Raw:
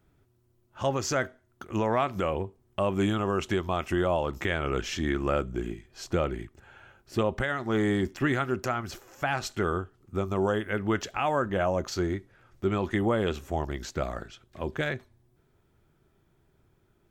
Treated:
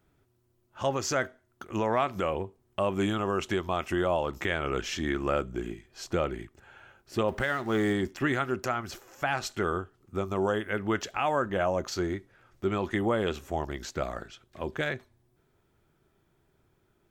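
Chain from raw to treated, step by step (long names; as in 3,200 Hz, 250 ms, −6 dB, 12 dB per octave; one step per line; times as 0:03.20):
0:07.28–0:07.93: mu-law and A-law mismatch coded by mu
low-shelf EQ 210 Hz −5 dB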